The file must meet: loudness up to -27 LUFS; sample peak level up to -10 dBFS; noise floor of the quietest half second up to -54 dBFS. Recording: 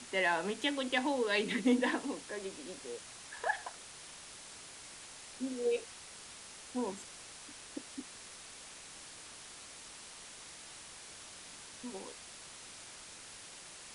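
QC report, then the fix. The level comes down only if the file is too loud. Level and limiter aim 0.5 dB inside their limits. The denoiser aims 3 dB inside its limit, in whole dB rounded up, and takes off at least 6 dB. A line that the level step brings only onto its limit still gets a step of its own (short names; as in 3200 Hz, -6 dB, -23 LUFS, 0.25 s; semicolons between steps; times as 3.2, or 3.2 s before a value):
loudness -39.0 LUFS: OK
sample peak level -17.5 dBFS: OK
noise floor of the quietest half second -51 dBFS: fail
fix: denoiser 6 dB, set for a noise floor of -51 dBFS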